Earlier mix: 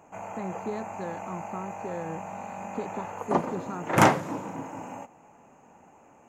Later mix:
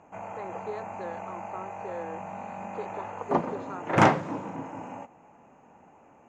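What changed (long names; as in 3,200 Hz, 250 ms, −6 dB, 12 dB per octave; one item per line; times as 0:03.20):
speech: add high-pass filter 370 Hz 24 dB per octave
master: add high-frequency loss of the air 110 metres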